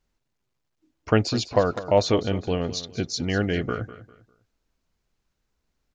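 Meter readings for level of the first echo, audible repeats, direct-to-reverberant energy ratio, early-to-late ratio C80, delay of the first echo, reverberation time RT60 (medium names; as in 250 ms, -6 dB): -15.0 dB, 2, no reverb, no reverb, 200 ms, no reverb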